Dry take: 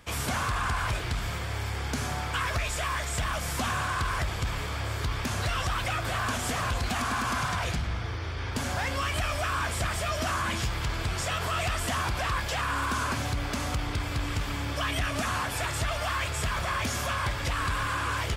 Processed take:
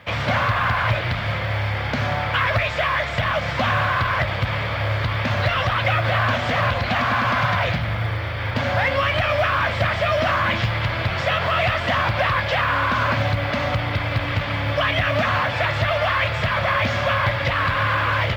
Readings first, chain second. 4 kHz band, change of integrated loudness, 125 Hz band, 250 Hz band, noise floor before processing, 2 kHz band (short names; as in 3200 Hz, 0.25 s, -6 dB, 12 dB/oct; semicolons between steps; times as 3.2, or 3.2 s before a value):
+7.0 dB, +9.0 dB, +9.0 dB, +6.5 dB, -33 dBFS, +10.5 dB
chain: speaker cabinet 110–4000 Hz, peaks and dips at 110 Hz +8 dB, 280 Hz -4 dB, 400 Hz -9 dB, 570 Hz +9 dB, 2000 Hz +5 dB; companded quantiser 8-bit; gain +8.5 dB